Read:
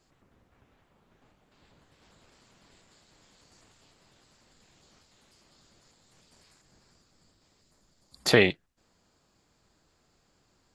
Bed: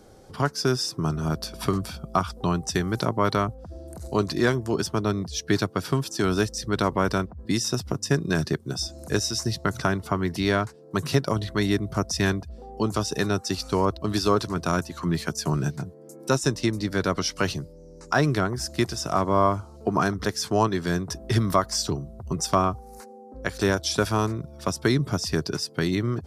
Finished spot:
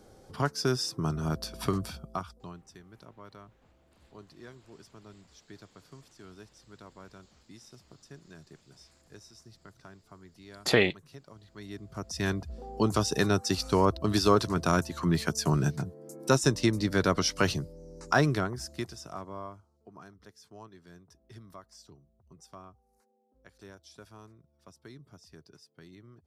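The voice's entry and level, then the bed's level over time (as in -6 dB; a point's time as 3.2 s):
2.40 s, -3.0 dB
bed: 1.9 s -4.5 dB
2.75 s -27 dB
11.37 s -27 dB
12.51 s -1 dB
18.1 s -1 dB
19.86 s -27.5 dB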